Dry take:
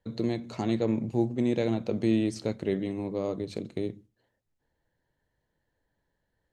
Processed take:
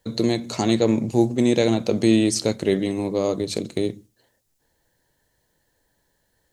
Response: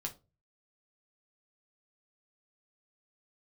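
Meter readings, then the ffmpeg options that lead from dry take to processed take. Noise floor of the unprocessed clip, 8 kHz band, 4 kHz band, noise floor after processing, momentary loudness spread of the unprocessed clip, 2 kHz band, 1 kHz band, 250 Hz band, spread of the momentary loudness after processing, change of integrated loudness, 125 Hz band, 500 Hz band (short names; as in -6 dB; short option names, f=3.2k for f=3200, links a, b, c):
-80 dBFS, +19.5 dB, +14.5 dB, -70 dBFS, 8 LU, +10.0 dB, +9.0 dB, +7.5 dB, 8 LU, +8.0 dB, +6.0 dB, +8.5 dB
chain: -af "bass=f=250:g=-3,treble=f=4k:g=12,volume=9dB"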